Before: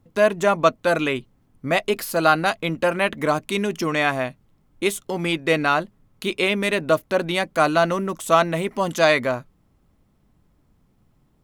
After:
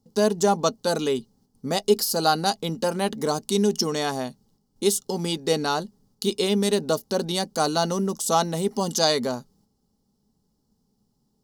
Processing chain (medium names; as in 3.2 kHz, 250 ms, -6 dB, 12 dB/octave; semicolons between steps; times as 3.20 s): gate -57 dBFS, range -6 dB; resonant high shelf 3.5 kHz +12 dB, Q 3; small resonant body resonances 220/420/810/2900 Hz, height 13 dB, ringing for 40 ms; trim -8.5 dB